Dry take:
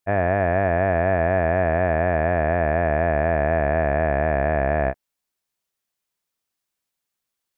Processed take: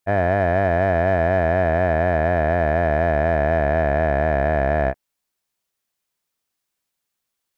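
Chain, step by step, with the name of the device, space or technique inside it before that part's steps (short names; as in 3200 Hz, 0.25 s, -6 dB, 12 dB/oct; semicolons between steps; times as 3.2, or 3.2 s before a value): parallel distortion (in parallel at -9.5 dB: hard clip -21.5 dBFS, distortion -7 dB)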